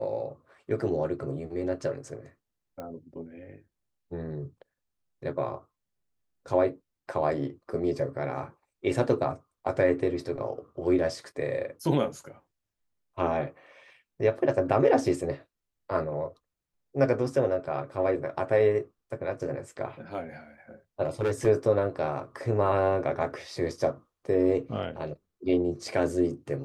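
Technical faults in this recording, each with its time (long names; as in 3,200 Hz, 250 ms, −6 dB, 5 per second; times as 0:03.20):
0:02.80: click −26 dBFS
0:21.03–0:21.47: clipping −22.5 dBFS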